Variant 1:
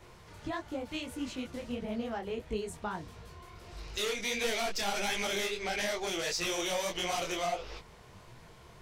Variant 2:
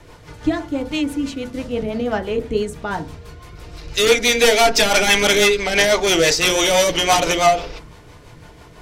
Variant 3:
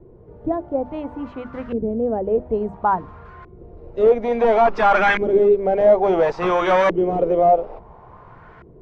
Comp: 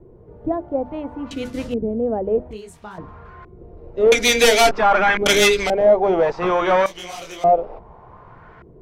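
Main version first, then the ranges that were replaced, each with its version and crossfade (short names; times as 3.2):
3
1.31–1.74 from 2
2.51–2.98 from 1
4.12–4.71 from 2
5.26–5.7 from 2
6.86–7.44 from 1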